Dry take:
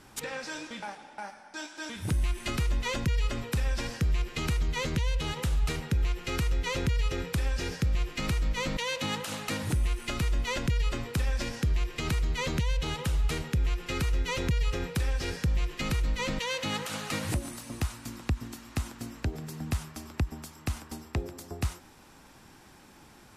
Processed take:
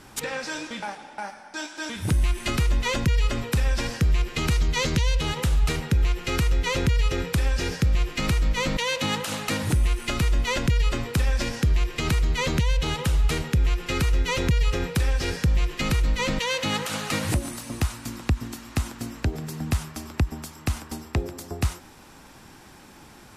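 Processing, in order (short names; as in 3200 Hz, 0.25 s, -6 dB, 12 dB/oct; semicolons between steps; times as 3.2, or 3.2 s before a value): 4.5–5.2 dynamic EQ 5200 Hz, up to +5 dB, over -50 dBFS, Q 1.1; gain +6 dB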